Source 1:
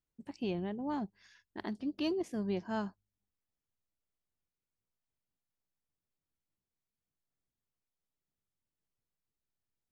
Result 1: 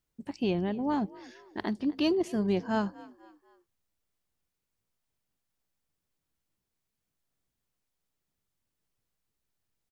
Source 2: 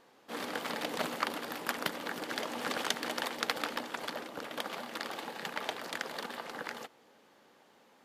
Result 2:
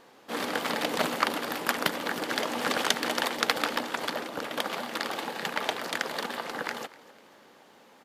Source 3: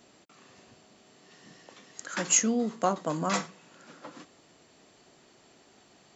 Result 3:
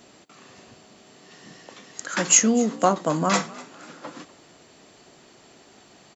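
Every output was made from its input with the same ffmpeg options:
-filter_complex "[0:a]asplit=4[s0][s1][s2][s3];[s1]adelay=247,afreqshift=53,volume=0.0944[s4];[s2]adelay=494,afreqshift=106,volume=0.0407[s5];[s3]adelay=741,afreqshift=159,volume=0.0174[s6];[s0][s4][s5][s6]amix=inputs=4:normalize=0,volume=2.24"

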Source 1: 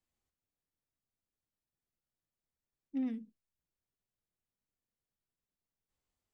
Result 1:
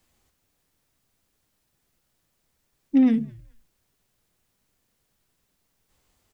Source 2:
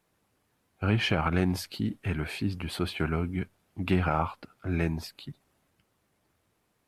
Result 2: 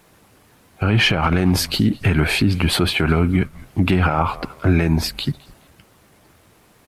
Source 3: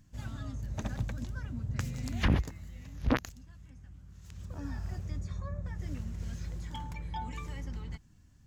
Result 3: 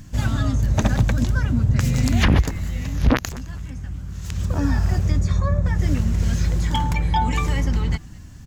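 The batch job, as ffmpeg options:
-filter_complex "[0:a]asplit=2[s0][s1];[s1]acompressor=threshold=0.0141:ratio=6,volume=1.26[s2];[s0][s2]amix=inputs=2:normalize=0,asplit=3[s3][s4][s5];[s4]adelay=212,afreqshift=-110,volume=0.0631[s6];[s5]adelay=424,afreqshift=-220,volume=0.0195[s7];[s3][s6][s7]amix=inputs=3:normalize=0,alimiter=level_in=8.41:limit=0.891:release=50:level=0:latency=1,volume=0.531"

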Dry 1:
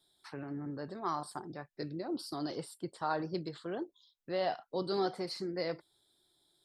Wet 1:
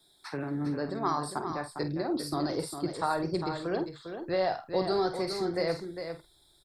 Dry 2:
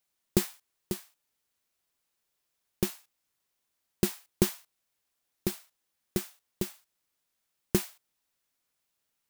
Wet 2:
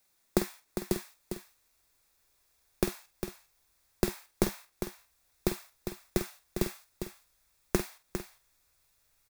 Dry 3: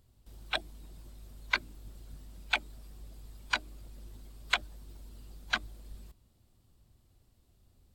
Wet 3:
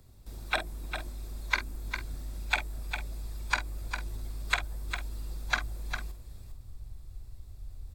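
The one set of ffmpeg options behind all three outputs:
-filter_complex "[0:a]bandreject=f=3000:w=6.3,asubboost=boost=7.5:cutoff=75,acrossover=split=130|2800|6000[s0][s1][s2][s3];[s0]acompressor=threshold=0.00501:ratio=4[s4];[s1]acompressor=threshold=0.02:ratio=4[s5];[s2]acompressor=threshold=0.00158:ratio=4[s6];[s3]acompressor=threshold=0.00355:ratio=4[s7];[s4][s5][s6][s7]amix=inputs=4:normalize=0,asplit=2[s8][s9];[s9]adelay=48,volume=0.316[s10];[s8][s10]amix=inputs=2:normalize=0,asplit=2[s11][s12];[s12]aecho=0:1:403:0.398[s13];[s11][s13]amix=inputs=2:normalize=0,volume=2.66"

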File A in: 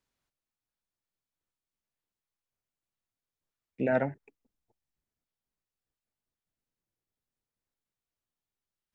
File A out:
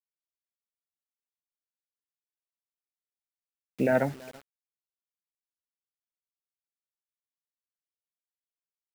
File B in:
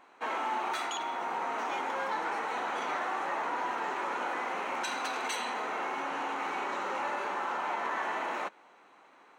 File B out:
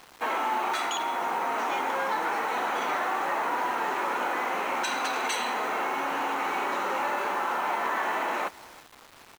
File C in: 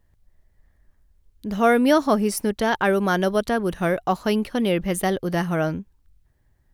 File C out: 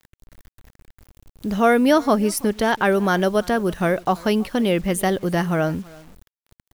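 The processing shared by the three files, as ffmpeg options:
-filter_complex "[0:a]asplit=2[s0][s1];[s1]acompressor=threshold=0.0251:ratio=6,volume=1.06[s2];[s0][s2]amix=inputs=2:normalize=0,aecho=1:1:330:0.0708,acrusher=bits=7:mix=0:aa=0.000001"

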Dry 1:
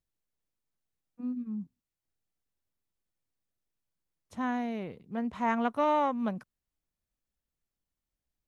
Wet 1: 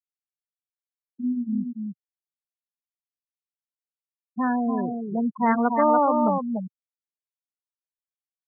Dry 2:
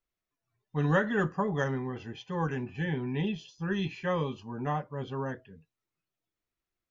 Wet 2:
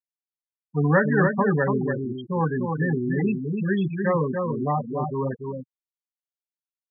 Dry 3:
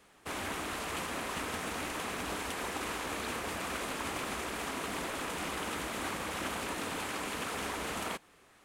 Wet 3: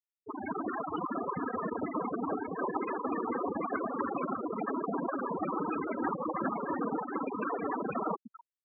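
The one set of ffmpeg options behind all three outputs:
-filter_complex "[0:a]aecho=1:1:290:0.562,asplit=2[s0][s1];[s1]asoftclip=type=tanh:threshold=0.0266,volume=0.596[s2];[s0][s2]amix=inputs=2:normalize=0,lowpass=f=4300:w=0.5412,lowpass=f=4300:w=1.3066,afftfilt=real='re*gte(hypot(re,im),0.0708)':imag='im*gte(hypot(re,im),0.0708)':win_size=1024:overlap=0.75,highpass=f=130:w=0.5412,highpass=f=130:w=1.3066,volume=1.88"

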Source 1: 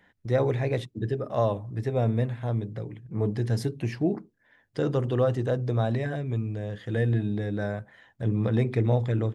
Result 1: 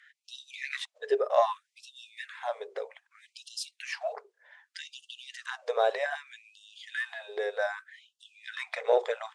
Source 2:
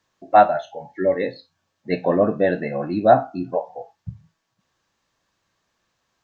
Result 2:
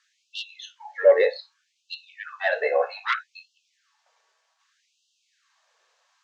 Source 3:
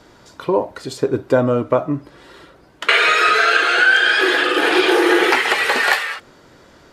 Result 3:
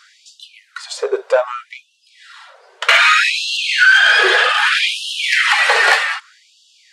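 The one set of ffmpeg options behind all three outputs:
-af "lowpass=f=9500:w=0.5412,lowpass=f=9500:w=1.3066,acontrast=69,afftfilt=real='re*gte(b*sr/1024,380*pow(2700/380,0.5+0.5*sin(2*PI*0.64*pts/sr)))':imag='im*gte(b*sr/1024,380*pow(2700/380,0.5+0.5*sin(2*PI*0.64*pts/sr)))':win_size=1024:overlap=0.75,volume=0.891"

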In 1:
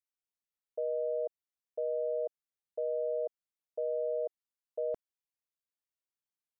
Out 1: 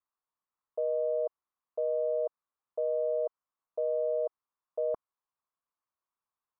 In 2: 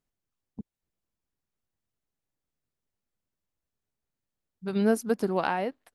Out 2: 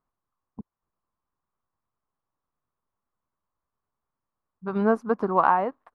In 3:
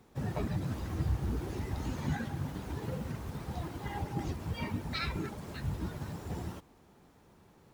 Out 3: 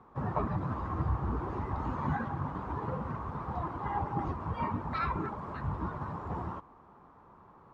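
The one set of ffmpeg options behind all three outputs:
-af "crystalizer=i=4.5:c=0,aeval=exprs='0.422*(cos(1*acos(clip(val(0)/0.422,-1,1)))-cos(1*PI/2))+0.00299*(cos(2*acos(clip(val(0)/0.422,-1,1)))-cos(2*PI/2))+0.00266*(cos(6*acos(clip(val(0)/0.422,-1,1)))-cos(6*PI/2))+0.00266*(cos(8*acos(clip(val(0)/0.422,-1,1)))-cos(8*PI/2))':c=same,lowpass=f=1100:t=q:w=4.5"

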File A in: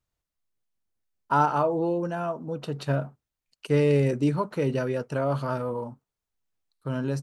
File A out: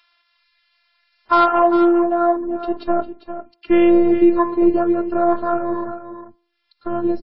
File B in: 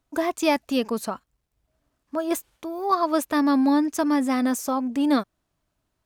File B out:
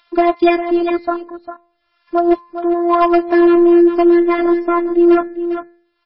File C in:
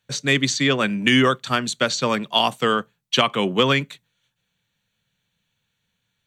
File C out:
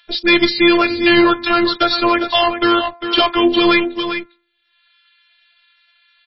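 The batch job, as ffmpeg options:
-filter_complex "[0:a]afwtdn=0.0224,lowpass=4700,bandreject=f=251.6:t=h:w=4,bandreject=f=503.2:t=h:w=4,bandreject=f=754.8:t=h:w=4,bandreject=f=1006.4:t=h:w=4,bandreject=f=1258:t=h:w=4,bandreject=f=1509.6:t=h:w=4,bandreject=f=1761.2:t=h:w=4,bandreject=f=2012.8:t=h:w=4,bandreject=f=2264.4:t=h:w=4,bandreject=f=2516:t=h:w=4,acrossover=split=980[s0][s1];[s1]acompressor=mode=upward:threshold=0.00562:ratio=2.5[s2];[s0][s2]amix=inputs=2:normalize=0,afftfilt=real='hypot(re,im)*cos(PI*b)':imag='0':win_size=512:overlap=0.75,aeval=exprs='clip(val(0),-1,0.133)':c=same,aecho=1:1:401:0.282,alimiter=level_in=7.94:limit=0.891:release=50:level=0:latency=1,volume=0.708" -ar 16000 -c:a libmp3lame -b:a 16k

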